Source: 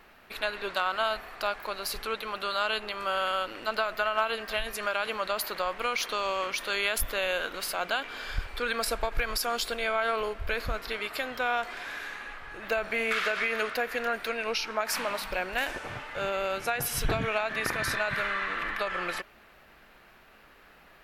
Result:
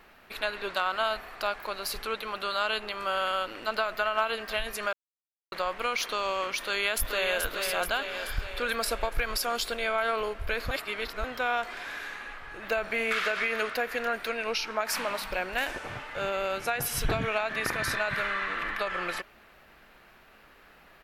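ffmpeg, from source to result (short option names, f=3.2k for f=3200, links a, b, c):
-filter_complex "[0:a]asplit=2[a][b];[b]afade=t=in:st=6.61:d=0.01,afade=t=out:st=7.42:d=0.01,aecho=0:1:430|860|1290|1720|2150|2580|3010|3440:0.562341|0.337405|0.202443|0.121466|0.0728794|0.0437277|0.0262366|0.015742[c];[a][c]amix=inputs=2:normalize=0,asplit=5[d][e][f][g][h];[d]atrim=end=4.93,asetpts=PTS-STARTPTS,afade=t=out:st=4.926:d=0.004:c=hsin[i];[e]atrim=start=4.93:end=5.52,asetpts=PTS-STARTPTS,volume=0[j];[f]atrim=start=5.52:end=10.712,asetpts=PTS-STARTPTS,afade=t=in:d=0.004:c=hsin[k];[g]atrim=start=10.708:end=11.242,asetpts=PTS-STARTPTS,areverse[l];[h]atrim=start=11.238[m];[i][j][k]concat=n=3:v=0:a=1[n];[n][l]acrossfade=d=0.004:c1=hsin:c2=hsin[o];[o][m]acrossfade=d=0.004:c1=hsin:c2=hsin"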